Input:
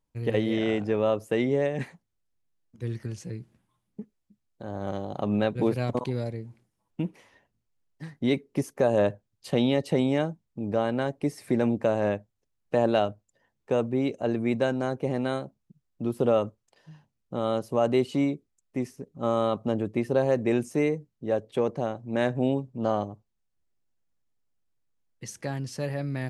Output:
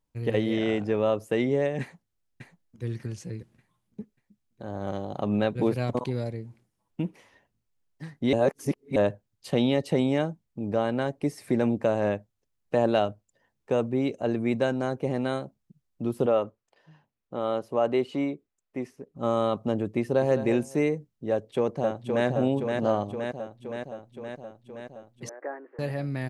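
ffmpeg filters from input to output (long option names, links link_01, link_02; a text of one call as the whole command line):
ffmpeg -i in.wav -filter_complex "[0:a]asplit=2[link_01][link_02];[link_02]afade=type=in:start_time=1.81:duration=0.01,afade=type=out:start_time=2.83:duration=0.01,aecho=0:1:590|1180|1770|2360:0.421697|0.147594|0.0516578|0.0180802[link_03];[link_01][link_03]amix=inputs=2:normalize=0,asettb=1/sr,asplit=3[link_04][link_05][link_06];[link_04]atrim=end=16.264[link_07];[link_05]atrim=start=16.26:end=19.16,asetpts=PTS-STARTPTS,afade=type=in:duration=0.004:curve=qsin,afade=type=out:start_time=2.896:duration=0.004:curve=qsin,bass=frequency=250:gain=-8,treble=frequency=4000:gain=-10[link_08];[link_06]atrim=start=19.156[link_09];[link_07][link_08]acrossfade=duration=0.004:curve1=hsin:curve2=qsin[link_10];[link_10][link_09]acrossfade=duration=0.004:curve1=qsin:curve2=hsin,asplit=2[link_11][link_12];[link_12]afade=type=in:start_time=20:duration=0.01,afade=type=out:start_time=20.41:duration=0.01,aecho=0:1:210|420|630:0.298538|0.0597077|0.0119415[link_13];[link_11][link_13]amix=inputs=2:normalize=0,asplit=2[link_14][link_15];[link_15]afade=type=in:start_time=21.31:duration=0.01,afade=type=out:start_time=22.27:duration=0.01,aecho=0:1:520|1040|1560|2080|2600|3120|3640|4160|4680|5200|5720|6240:0.630957|0.44167|0.309169|0.216418|0.151493|0.106045|0.0742315|0.0519621|0.0363734|0.0254614|0.017823|0.0124761[link_16];[link_14][link_16]amix=inputs=2:normalize=0,asettb=1/sr,asplit=3[link_17][link_18][link_19];[link_17]atrim=end=25.294[link_20];[link_18]atrim=start=25.29:end=25.79,asetpts=PTS-STARTPTS,afade=type=in:duration=0.004:curve=qsin,afade=type=out:start_time=0.496:duration=0.004:curve=qsin,asuperpass=centerf=770:order=12:qfactor=0.5[link_21];[link_19]atrim=start=25.786[link_22];[link_20][link_21]acrossfade=duration=0.004:curve1=hsin:curve2=qsin[link_23];[link_23][link_22]acrossfade=duration=0.004:curve1=qsin:curve2=hsin,asplit=3[link_24][link_25][link_26];[link_24]atrim=end=8.332[link_27];[link_25]atrim=start=8.328:end=8.962,asetpts=PTS-STARTPTS,areverse[link_28];[link_26]atrim=start=8.958[link_29];[link_27][link_28]acrossfade=duration=0.004:curve1=hsin:curve2=hsin[link_30];[link_30][link_29]acrossfade=duration=0.004:curve1=hsin:curve2=hsin" out.wav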